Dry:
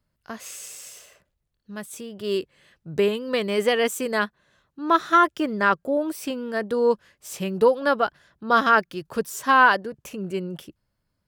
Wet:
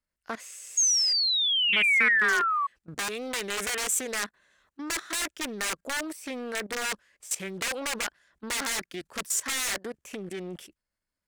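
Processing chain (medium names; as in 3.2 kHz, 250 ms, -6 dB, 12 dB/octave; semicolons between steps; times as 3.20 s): integer overflow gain 17 dB; level held to a coarse grid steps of 18 dB; painted sound fall, 0.77–2.67 s, 1.1–6.7 kHz -31 dBFS; graphic EQ 125/2000/8000 Hz -12/+7/+9 dB; loudspeaker Doppler distortion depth 0.29 ms; trim +2.5 dB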